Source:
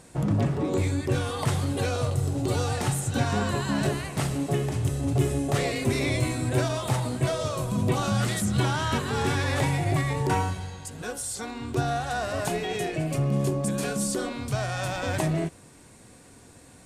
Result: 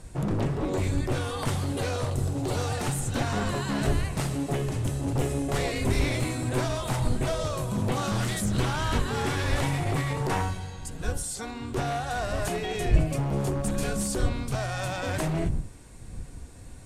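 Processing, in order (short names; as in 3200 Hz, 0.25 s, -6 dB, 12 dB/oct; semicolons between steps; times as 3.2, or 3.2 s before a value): one-sided fold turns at -23 dBFS; wind noise 81 Hz -32 dBFS; gain -1 dB; AAC 96 kbps 32000 Hz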